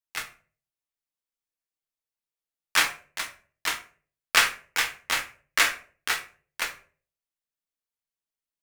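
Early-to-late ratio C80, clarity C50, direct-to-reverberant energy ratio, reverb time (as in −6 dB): 16.5 dB, 12.0 dB, 3.0 dB, 0.45 s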